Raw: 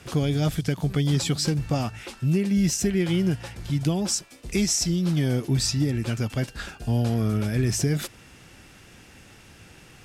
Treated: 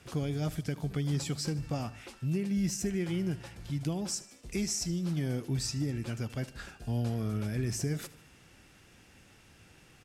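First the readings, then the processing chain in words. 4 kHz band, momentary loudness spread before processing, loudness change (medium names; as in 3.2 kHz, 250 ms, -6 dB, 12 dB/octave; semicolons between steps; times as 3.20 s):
-10.5 dB, 7 LU, -9.0 dB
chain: dynamic bell 3.5 kHz, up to -5 dB, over -45 dBFS, Q 2.5; feedback delay 76 ms, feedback 51%, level -18 dB; trim -9 dB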